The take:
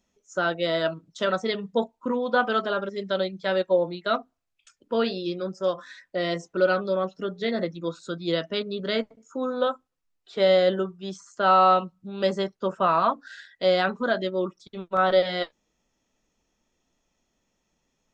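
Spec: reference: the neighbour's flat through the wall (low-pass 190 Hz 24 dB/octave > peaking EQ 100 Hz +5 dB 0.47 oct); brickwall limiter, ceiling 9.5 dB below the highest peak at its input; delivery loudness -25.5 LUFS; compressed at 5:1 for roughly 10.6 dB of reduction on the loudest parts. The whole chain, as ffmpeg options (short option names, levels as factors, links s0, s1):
-af "acompressor=threshold=0.0447:ratio=5,alimiter=level_in=1.19:limit=0.0631:level=0:latency=1,volume=0.841,lowpass=f=190:w=0.5412,lowpass=f=190:w=1.3066,equalizer=f=100:t=o:w=0.47:g=5,volume=12.6"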